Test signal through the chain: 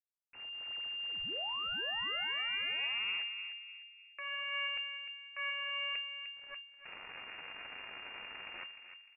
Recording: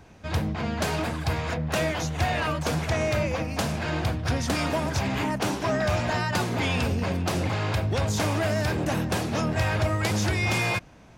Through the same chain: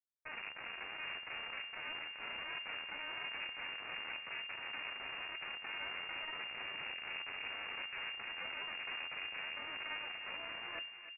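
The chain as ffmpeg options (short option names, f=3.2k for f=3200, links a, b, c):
-filter_complex "[0:a]highpass=f=260:w=0.5412,highpass=f=260:w=1.3066,highshelf=f=2.1k:g=-6,acrossover=split=1700[a][b];[b]acompressor=mode=upward:threshold=-49dB:ratio=2.5[c];[a][c]amix=inputs=2:normalize=0,alimiter=limit=-22.5dB:level=0:latency=1:release=345,areverse,acompressor=threshold=-42dB:ratio=12,areverse,acrusher=bits=4:dc=4:mix=0:aa=0.000001,flanger=delay=9.4:depth=1.4:regen=66:speed=1.2:shape=sinusoidal,asplit=2[d][e];[e]adelay=302,lowpass=f=990:p=1,volume=-6.5dB,asplit=2[f][g];[g]adelay=302,lowpass=f=990:p=1,volume=0.44,asplit=2[h][i];[i]adelay=302,lowpass=f=990:p=1,volume=0.44,asplit=2[j][k];[k]adelay=302,lowpass=f=990:p=1,volume=0.44,asplit=2[l][m];[m]adelay=302,lowpass=f=990:p=1,volume=0.44[n];[d][f][h][j][l][n]amix=inputs=6:normalize=0,lowpass=f=2.4k:t=q:w=0.5098,lowpass=f=2.4k:t=q:w=0.6013,lowpass=f=2.4k:t=q:w=0.9,lowpass=f=2.4k:t=q:w=2.563,afreqshift=-2800,volume=6.5dB"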